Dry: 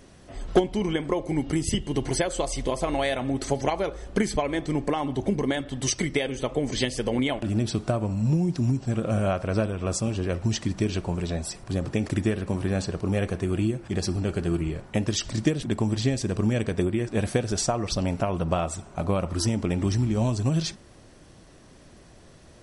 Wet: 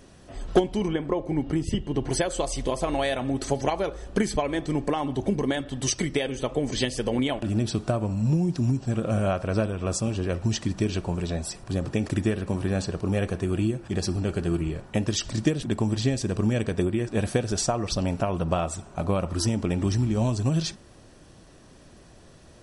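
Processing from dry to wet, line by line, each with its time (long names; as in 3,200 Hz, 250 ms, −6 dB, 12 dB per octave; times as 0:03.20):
0:00.88–0:02.10: low-pass filter 2,000 Hz 6 dB per octave
whole clip: notch filter 2,100 Hz, Q 14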